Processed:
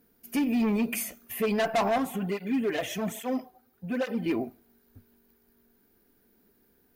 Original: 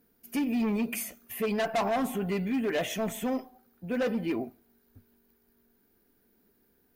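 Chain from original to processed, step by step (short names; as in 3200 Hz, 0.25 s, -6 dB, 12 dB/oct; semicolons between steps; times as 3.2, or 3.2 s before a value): 1.98–4.26 tape flanging out of phase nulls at 1.2 Hz, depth 5.6 ms; gain +2.5 dB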